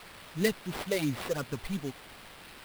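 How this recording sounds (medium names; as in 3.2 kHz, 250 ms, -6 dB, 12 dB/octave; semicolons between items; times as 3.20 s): a quantiser's noise floor 8-bit, dither triangular; phasing stages 12, 2.9 Hz, lowest notch 260–1100 Hz; aliases and images of a low sample rate 6.6 kHz, jitter 20%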